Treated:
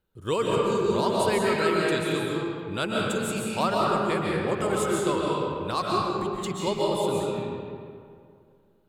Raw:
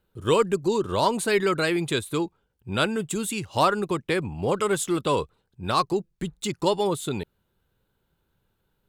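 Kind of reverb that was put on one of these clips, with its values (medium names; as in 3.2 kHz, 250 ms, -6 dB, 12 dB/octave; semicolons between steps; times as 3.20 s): algorithmic reverb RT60 2.3 s, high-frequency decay 0.6×, pre-delay 100 ms, DRR -4 dB; trim -6 dB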